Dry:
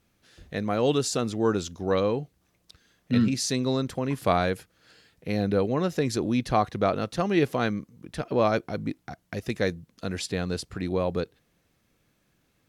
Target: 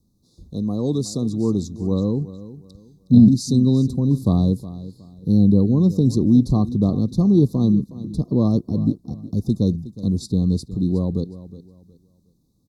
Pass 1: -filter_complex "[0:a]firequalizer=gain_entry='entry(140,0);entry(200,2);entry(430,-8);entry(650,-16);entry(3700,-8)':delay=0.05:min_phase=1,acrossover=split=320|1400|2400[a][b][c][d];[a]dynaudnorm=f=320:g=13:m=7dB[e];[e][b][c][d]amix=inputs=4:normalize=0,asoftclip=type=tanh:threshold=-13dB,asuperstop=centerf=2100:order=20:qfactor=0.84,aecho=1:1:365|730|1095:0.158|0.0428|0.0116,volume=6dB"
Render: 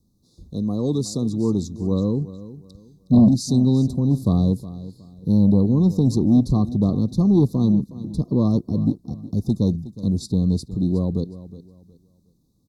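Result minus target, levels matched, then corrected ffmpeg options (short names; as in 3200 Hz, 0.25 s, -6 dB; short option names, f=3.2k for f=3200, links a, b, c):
soft clip: distortion +18 dB
-filter_complex "[0:a]firequalizer=gain_entry='entry(140,0);entry(200,2);entry(430,-8);entry(650,-16);entry(3700,-8)':delay=0.05:min_phase=1,acrossover=split=320|1400|2400[a][b][c][d];[a]dynaudnorm=f=320:g=13:m=7dB[e];[e][b][c][d]amix=inputs=4:normalize=0,asoftclip=type=tanh:threshold=-2dB,asuperstop=centerf=2100:order=20:qfactor=0.84,aecho=1:1:365|730|1095:0.158|0.0428|0.0116,volume=6dB"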